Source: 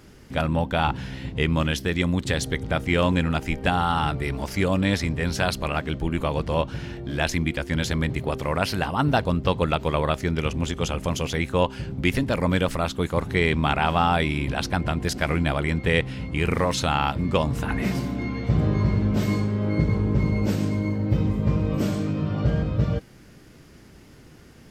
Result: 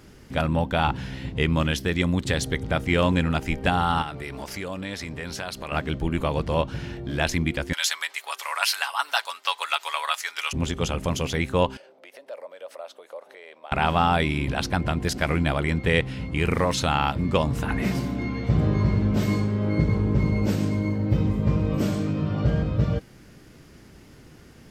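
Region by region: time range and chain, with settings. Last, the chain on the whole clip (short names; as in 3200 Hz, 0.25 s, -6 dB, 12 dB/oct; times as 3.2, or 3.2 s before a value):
4.02–5.72 low shelf 240 Hz -9.5 dB + compressor 3:1, threshold -30 dBFS
7.73–10.53 HPF 900 Hz 24 dB/oct + high shelf 3500 Hz +10.5 dB + comb 7.1 ms, depth 44%
11.77–13.72 notch 7100 Hz, Q 9.1 + compressor 16:1, threshold -26 dBFS + ladder high-pass 530 Hz, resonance 70%
whole clip: dry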